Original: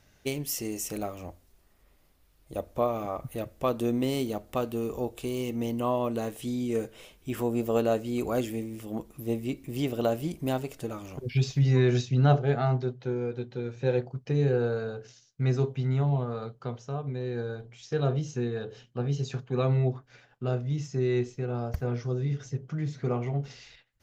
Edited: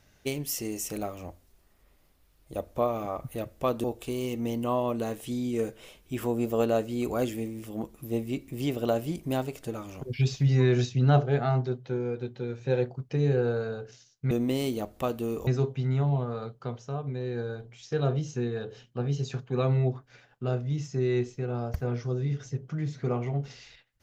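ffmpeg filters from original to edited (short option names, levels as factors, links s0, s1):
-filter_complex "[0:a]asplit=4[s0][s1][s2][s3];[s0]atrim=end=3.842[s4];[s1]atrim=start=4.998:end=15.472[s5];[s2]atrim=start=3.838:end=5.002[s6];[s3]atrim=start=15.468[s7];[s4][s5]acrossfade=d=0.004:c1=hsin:c2=hsin[s8];[s8][s6]acrossfade=d=0.004:c1=hsin:c2=hsin[s9];[s9][s7]acrossfade=d=0.004:c1=hsin:c2=hsin"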